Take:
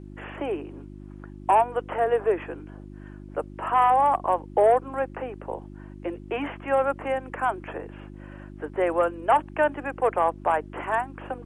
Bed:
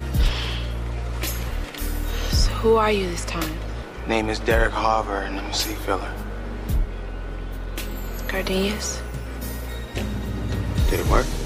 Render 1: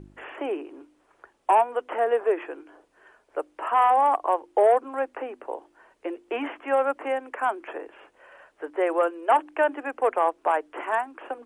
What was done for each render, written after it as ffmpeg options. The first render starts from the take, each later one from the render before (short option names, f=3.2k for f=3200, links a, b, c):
-af "bandreject=f=50:t=h:w=4,bandreject=f=100:t=h:w=4,bandreject=f=150:t=h:w=4,bandreject=f=200:t=h:w=4,bandreject=f=250:t=h:w=4,bandreject=f=300:t=h:w=4,bandreject=f=350:t=h:w=4"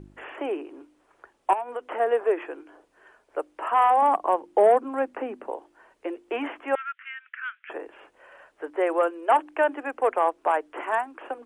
-filter_complex "[0:a]asettb=1/sr,asplit=3[a][b][c];[a]atrim=end=1.534[d];[b]atrim=start=1.53:end=2,asetpts=PTS-STARTPTS,afade=t=in:d=0.004:c=qsin,afade=t=out:st=0.466:d=0.004:c=qsin,acompressor=threshold=-27dB:ratio=6:attack=3.2:release=140:knee=1:detection=peak[e];[c]atrim=start=1.996[f];[d][e]acrossfade=d=0.004:c1=hsin:c2=qsin[g];[g][f]acrossfade=d=0.004:c1=qsin:c2=hsin,asettb=1/sr,asplit=3[h][i][j];[h]atrim=end=4.024[k];[i]atrim=start=4.02:end=5.5,asetpts=PTS-STARTPTS,afade=t=in:d=0.004:c=qsin,afade=t=out:st=1.476:d=0.004:c=qsin,equalizer=f=200:t=o:w=0.77:g=14.5[l];[j]atrim=start=5.496[m];[k][l]acrossfade=d=0.004:c1=hsin:c2=qsin[n];[n][m]acrossfade=d=0.004:c1=qsin:c2=hsin,asettb=1/sr,asplit=3[o][p][q];[o]atrim=end=6.754[r];[p]atrim=start=6.75:end=7.7,asetpts=PTS-STARTPTS,afade=t=in:d=0.004:c=qsin,afade=t=out:st=0.946:d=0.004:c=qsin,asuperpass=centerf=2200:order=12:qfactor=1[s];[q]atrim=start=7.696[t];[r][s]acrossfade=d=0.004:c1=hsin:c2=qsin[u];[u][t]acrossfade=d=0.004:c1=qsin:c2=hsin"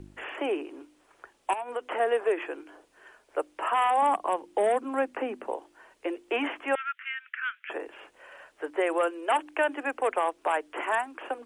-filter_complex "[0:a]acrossover=split=250|2200[a][b][c];[b]alimiter=limit=-18dB:level=0:latency=1:release=191[d];[c]acontrast=66[e];[a][d][e]amix=inputs=3:normalize=0"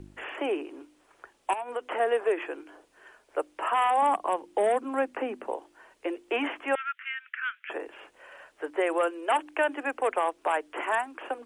-af anull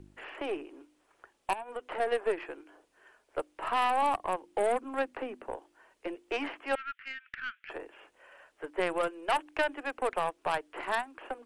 -af "aeval=exprs='0.224*(cos(1*acos(clip(val(0)/0.224,-1,1)))-cos(1*PI/2))+0.0398*(cos(3*acos(clip(val(0)/0.224,-1,1)))-cos(3*PI/2))+0.00631*(cos(6*acos(clip(val(0)/0.224,-1,1)))-cos(6*PI/2))':c=same"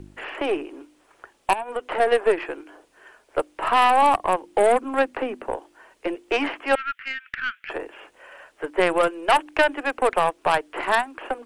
-af "volume=10.5dB"